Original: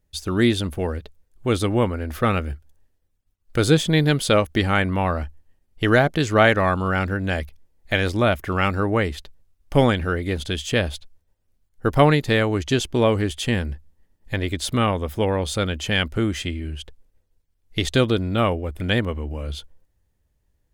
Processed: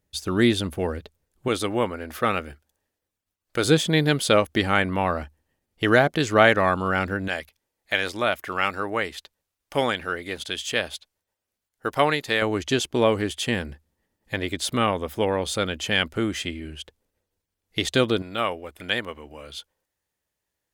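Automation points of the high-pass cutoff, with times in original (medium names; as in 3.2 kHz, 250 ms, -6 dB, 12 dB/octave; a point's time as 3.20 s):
high-pass 6 dB/octave
130 Hz
from 1.48 s 420 Hz
from 3.65 s 200 Hz
from 7.28 s 790 Hz
from 12.42 s 250 Hz
from 18.22 s 910 Hz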